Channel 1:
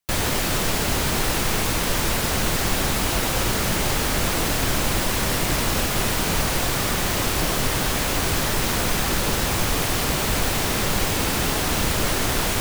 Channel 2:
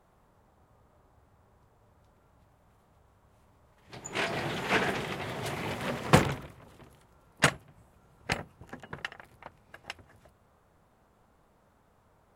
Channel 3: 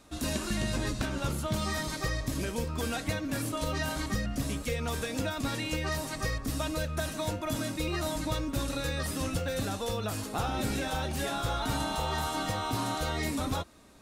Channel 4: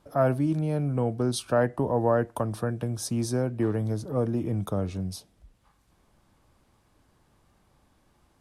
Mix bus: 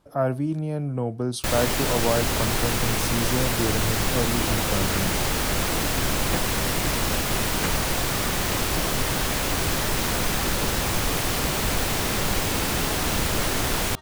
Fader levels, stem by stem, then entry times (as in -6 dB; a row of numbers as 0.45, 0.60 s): -2.0, -9.5, -15.0, -0.5 dB; 1.35, 0.20, 1.85, 0.00 s